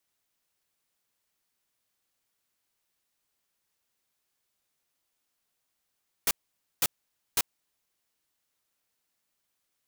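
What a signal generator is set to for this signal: noise bursts white, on 0.04 s, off 0.51 s, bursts 3, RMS -24 dBFS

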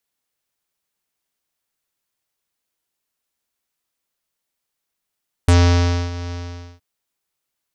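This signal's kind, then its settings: synth note square F2 24 dB/oct, low-pass 5700 Hz, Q 2.1, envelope 1 oct, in 0.07 s, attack 3.1 ms, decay 0.62 s, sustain -17 dB, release 0.48 s, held 0.84 s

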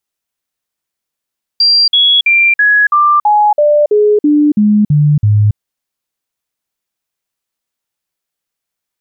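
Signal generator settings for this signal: stepped sine 4740 Hz down, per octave 2, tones 12, 0.28 s, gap 0.05 s -5.5 dBFS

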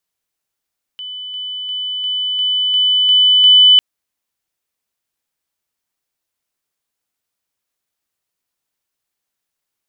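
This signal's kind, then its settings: level ladder 3000 Hz -25.5 dBFS, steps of 3 dB, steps 8, 0.35 s 0.00 s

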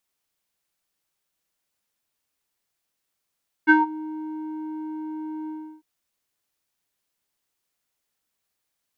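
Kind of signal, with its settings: synth note square D#4 12 dB/oct, low-pass 650 Hz, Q 6.8, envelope 1.5 oct, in 0.24 s, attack 26 ms, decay 0.16 s, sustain -18.5 dB, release 0.34 s, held 1.81 s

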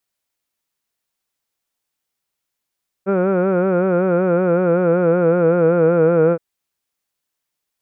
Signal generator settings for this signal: formant vowel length 3.32 s, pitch 189 Hz, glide -2.5 st, vibrato depth 0.85 st, F1 480 Hz, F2 1400 Hz, F3 2400 Hz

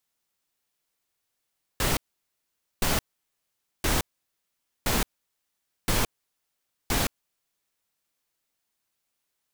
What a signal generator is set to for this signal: noise bursts pink, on 0.17 s, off 0.85 s, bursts 6, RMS -24 dBFS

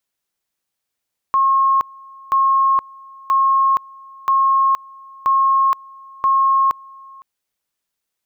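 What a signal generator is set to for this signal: two-level tone 1080 Hz -11.5 dBFS, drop 25.5 dB, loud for 0.47 s, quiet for 0.51 s, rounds 6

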